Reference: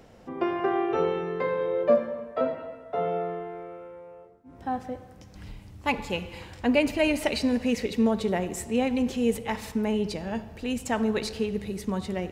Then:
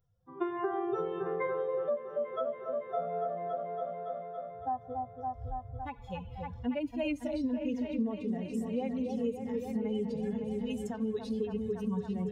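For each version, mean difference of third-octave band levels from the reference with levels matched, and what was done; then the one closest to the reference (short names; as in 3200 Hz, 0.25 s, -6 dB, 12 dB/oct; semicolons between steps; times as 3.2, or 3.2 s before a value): 8.5 dB: per-bin expansion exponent 2; on a send: repeats that get brighter 0.281 s, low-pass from 750 Hz, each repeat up 1 oct, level -6 dB; on the sum: compressor 6:1, threshold -38 dBFS, peak gain reduction 19 dB; harmonic-percussive split percussive -18 dB; gain +8 dB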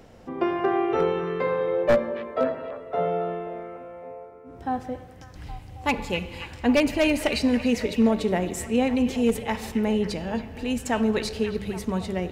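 1.5 dB: one-sided fold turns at -16 dBFS; low shelf 150 Hz +4 dB; notches 50/100/150/200 Hz; delay with a stepping band-pass 0.273 s, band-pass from 2600 Hz, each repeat -0.7 oct, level -8.5 dB; gain +2 dB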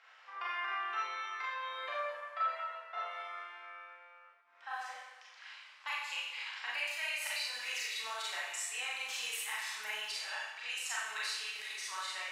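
16.5 dB: low-pass opened by the level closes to 2800 Hz, open at -24 dBFS; HPF 1200 Hz 24 dB/oct; compressor 4:1, threshold -42 dBFS, peak gain reduction 15 dB; Schroeder reverb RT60 0.85 s, combs from 29 ms, DRR -6 dB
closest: second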